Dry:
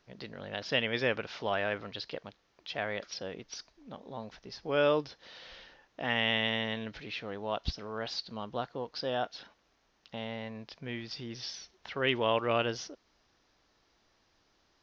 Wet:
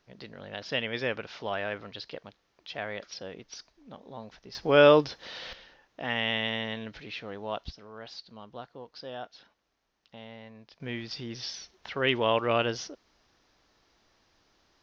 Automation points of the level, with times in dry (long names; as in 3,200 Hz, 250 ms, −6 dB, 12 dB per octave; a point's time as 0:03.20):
−1 dB
from 0:04.55 +9 dB
from 0:05.53 0 dB
from 0:07.64 −7 dB
from 0:10.80 +3 dB